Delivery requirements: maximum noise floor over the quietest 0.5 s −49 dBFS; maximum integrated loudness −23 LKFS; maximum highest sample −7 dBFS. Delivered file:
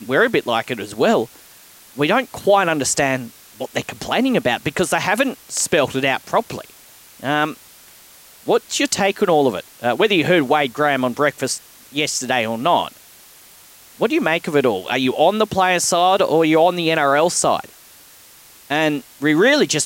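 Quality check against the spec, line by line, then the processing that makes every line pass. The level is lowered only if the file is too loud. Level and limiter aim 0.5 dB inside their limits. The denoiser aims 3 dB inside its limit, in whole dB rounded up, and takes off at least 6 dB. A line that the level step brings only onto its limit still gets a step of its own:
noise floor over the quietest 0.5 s −46 dBFS: out of spec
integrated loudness −18.0 LKFS: out of spec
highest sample −4.5 dBFS: out of spec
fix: level −5.5 dB

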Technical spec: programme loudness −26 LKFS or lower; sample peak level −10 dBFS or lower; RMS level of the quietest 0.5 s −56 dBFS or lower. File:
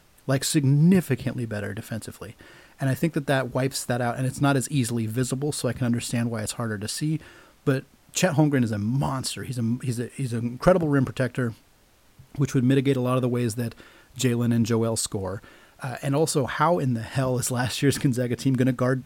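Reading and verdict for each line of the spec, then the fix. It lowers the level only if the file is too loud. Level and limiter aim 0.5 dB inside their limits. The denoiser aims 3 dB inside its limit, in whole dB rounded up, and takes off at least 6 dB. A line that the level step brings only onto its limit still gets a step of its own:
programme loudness −25.0 LKFS: out of spec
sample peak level −6.5 dBFS: out of spec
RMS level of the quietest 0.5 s −58 dBFS: in spec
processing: level −1.5 dB
brickwall limiter −10.5 dBFS

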